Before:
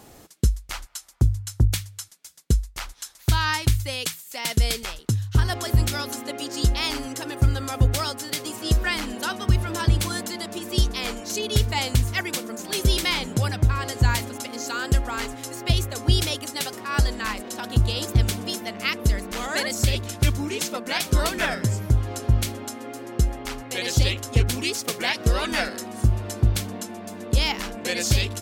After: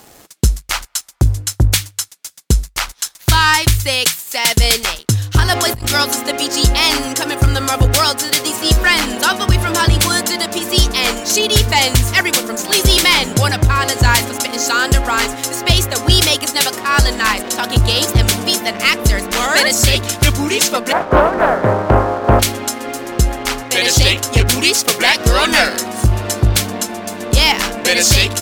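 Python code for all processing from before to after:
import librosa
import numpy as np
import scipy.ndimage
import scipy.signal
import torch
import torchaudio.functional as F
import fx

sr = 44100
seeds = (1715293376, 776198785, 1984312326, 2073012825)

y = fx.chain(x, sr, fx.transient(attack_db=-9, sustain_db=-4),
    fx.over_compress(threshold_db=-29.0, ratio=-1.0), at=(5.54, 6.04))
y = fx.spec_flatten(y, sr, power=0.55, at=(20.91, 22.39), fade=0.02)
y = fx.lowpass(y, sr, hz=1400.0, slope=24, at=(20.91, 22.39), fade=0.02)
y = fx.peak_eq(y, sr, hz=590.0, db=7.0, octaves=1.3, at=(20.91, 22.39), fade=0.02)
y = fx.low_shelf(y, sr, hz=410.0, db=-7.5)
y = fx.leveller(y, sr, passes=2)
y = y * 10.0 ** (7.5 / 20.0)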